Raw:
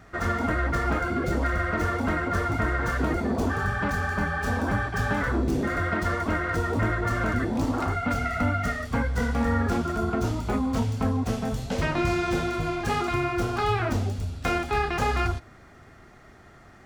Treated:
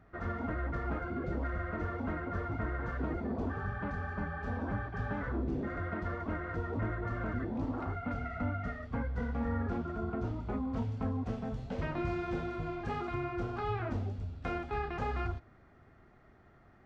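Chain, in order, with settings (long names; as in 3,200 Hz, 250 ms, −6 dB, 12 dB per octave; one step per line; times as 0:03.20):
head-to-tape spacing loss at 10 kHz 32 dB, from 0:10.76 at 10 kHz 25 dB
level −8.5 dB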